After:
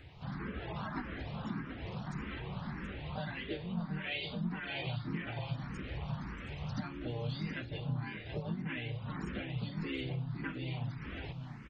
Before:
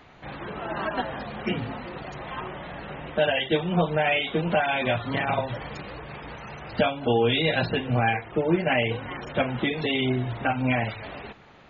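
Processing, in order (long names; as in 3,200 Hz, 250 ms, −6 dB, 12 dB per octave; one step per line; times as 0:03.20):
drawn EQ curve 130 Hz 0 dB, 610 Hz −17 dB, 1,100 Hz −11 dB
downward compressor 8 to 1, threshold −41 dBFS, peak gain reduction 18 dB
pitch-shifted copies added +4 semitones −4 dB
on a send: single-tap delay 728 ms −7.5 dB
on the sum: frequency shifter mixed with the dry sound +1.7 Hz
level +6 dB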